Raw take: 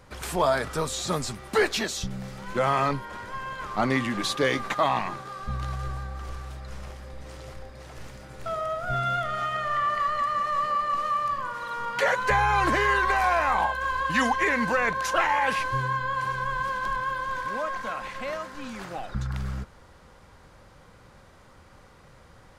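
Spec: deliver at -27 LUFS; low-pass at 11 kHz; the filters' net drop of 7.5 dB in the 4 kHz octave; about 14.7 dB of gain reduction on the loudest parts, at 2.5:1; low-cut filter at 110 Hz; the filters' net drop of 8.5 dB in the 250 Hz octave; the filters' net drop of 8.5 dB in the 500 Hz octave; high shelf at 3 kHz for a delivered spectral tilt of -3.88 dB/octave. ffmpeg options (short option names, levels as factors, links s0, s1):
-af "highpass=110,lowpass=11000,equalizer=f=250:t=o:g=-8,equalizer=f=500:t=o:g=-9,highshelf=f=3000:g=-4,equalizer=f=4000:t=o:g=-6.5,acompressor=threshold=0.00501:ratio=2.5,volume=6.31"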